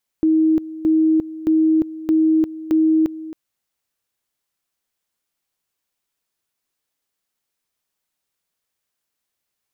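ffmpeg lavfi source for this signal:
-f lavfi -i "aevalsrc='pow(10,(-12-16.5*gte(mod(t,0.62),0.35))/20)*sin(2*PI*317*t)':d=3.1:s=44100"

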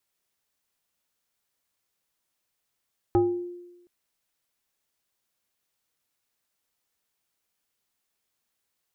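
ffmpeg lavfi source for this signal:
-f lavfi -i "aevalsrc='0.168*pow(10,-3*t/1.04)*sin(2*PI*352*t+0.87*pow(10,-3*t/0.54)*sin(2*PI*1.29*352*t))':d=0.72:s=44100"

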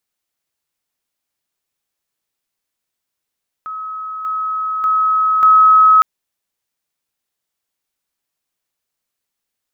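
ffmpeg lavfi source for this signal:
-f lavfi -i "aevalsrc='pow(10,(-23.5+6*floor(t/0.59))/20)*sin(2*PI*1280*t)':d=2.36:s=44100"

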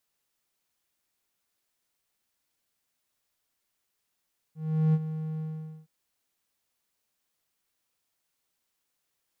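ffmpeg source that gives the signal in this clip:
-f lavfi -i "aevalsrc='0.15*(1-4*abs(mod(157*t+0.25,1)-0.5))':d=1.318:s=44100,afade=t=in:d=0.388,afade=t=out:st=0.388:d=0.045:silence=0.251,afade=t=out:st=0.85:d=0.468"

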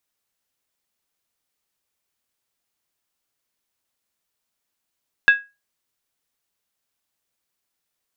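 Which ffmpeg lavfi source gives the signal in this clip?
-f lavfi -i "aevalsrc='0.531*pow(10,-3*t/0.25)*sin(2*PI*1650*t)+0.168*pow(10,-3*t/0.198)*sin(2*PI*2630.1*t)+0.0531*pow(10,-3*t/0.171)*sin(2*PI*3524.4*t)+0.0168*pow(10,-3*t/0.165)*sin(2*PI*3788.4*t)+0.00531*pow(10,-3*t/0.153)*sin(2*PI*4377.4*t)':d=0.63:s=44100"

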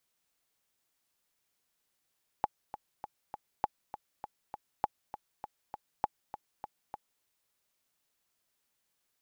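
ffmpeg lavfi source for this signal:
-f lavfi -i "aevalsrc='pow(10,(-14.5-12.5*gte(mod(t,4*60/200),60/200))/20)*sin(2*PI*844*mod(t,60/200))*exp(-6.91*mod(t,60/200)/0.03)':d=4.8:s=44100"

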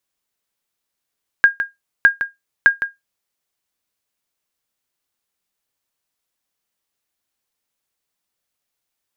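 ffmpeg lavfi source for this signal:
-f lavfi -i "aevalsrc='0.841*(sin(2*PI*1620*mod(t,0.61))*exp(-6.91*mod(t,0.61)/0.17)+0.299*sin(2*PI*1620*max(mod(t,0.61)-0.16,0))*exp(-6.91*max(mod(t,0.61)-0.16,0)/0.17))':d=1.83:s=44100"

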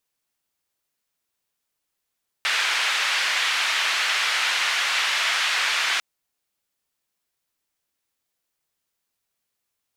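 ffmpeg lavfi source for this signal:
-f lavfi -i "anoisesrc=c=white:d=3.55:r=44100:seed=1,highpass=f=1500,lowpass=f=2700,volume=-6.3dB"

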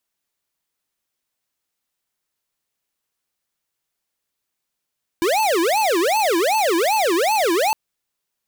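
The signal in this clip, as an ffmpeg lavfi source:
-f lavfi -i "aevalsrc='0.126*(2*lt(mod((605.5*t-277.5/(2*PI*2.6)*sin(2*PI*2.6*t)),1),0.5)-1)':d=2.51:s=44100"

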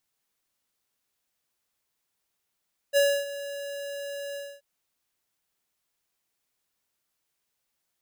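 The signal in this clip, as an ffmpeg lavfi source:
-f lavfi -i "aevalsrc='0.106*(2*lt(mod(565*t,1),0.5)-1)':d=1.68:s=44100,afade=t=in:d=0.039,afade=t=out:st=0.039:d=0.28:silence=0.158,afade=t=out:st=1.43:d=0.25"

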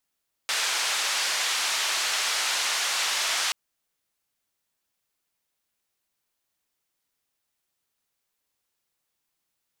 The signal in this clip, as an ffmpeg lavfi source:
-f lavfi -i "anoisesrc=c=white:d=3.03:r=44100:seed=1,highpass=f=870,lowpass=f=5900,volume=-15.5dB"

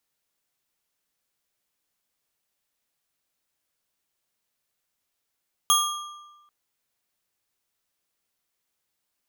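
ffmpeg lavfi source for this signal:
-f lavfi -i "aevalsrc='0.112*pow(10,-3*t/1.21)*sin(2*PI*1190*t)+0.1*pow(10,-3*t/0.893)*sin(2*PI*3280.8*t)+0.0891*pow(10,-3*t/0.729)*sin(2*PI*6430.8*t)+0.0794*pow(10,-3*t/0.627)*sin(2*PI*10630.3*t)+0.0708*pow(10,-3*t/0.556)*sin(2*PI*15874.6*t)':d=0.79:s=44100"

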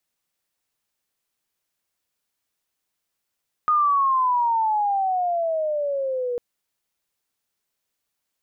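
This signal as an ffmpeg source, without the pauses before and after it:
-f lavfi -i "aevalsrc='pow(10,(-15.5-7.5*t/2.7)/20)*sin(2*PI*1240*2.7/(-16.5*log(2)/12)*(exp(-16.5*log(2)/12*t/2.7)-1))':d=2.7:s=44100"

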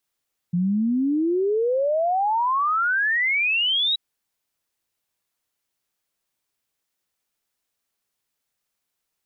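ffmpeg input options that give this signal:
-f lavfi -i "aevalsrc='0.119*clip(min(t,3.43-t)/0.01,0,1)*sin(2*PI*170*3.43/log(3900/170)*(exp(log(3900/170)*t/3.43)-1))':d=3.43:s=44100"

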